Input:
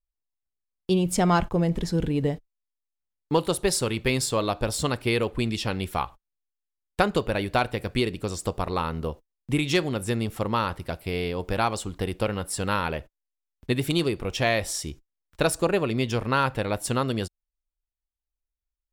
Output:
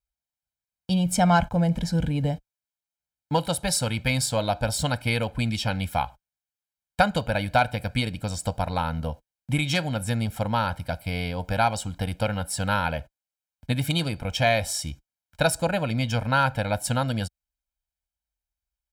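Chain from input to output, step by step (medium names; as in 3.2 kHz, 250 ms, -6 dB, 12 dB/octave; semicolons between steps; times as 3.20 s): high-pass 47 Hz; comb 1.3 ms, depth 100%; trim -1.5 dB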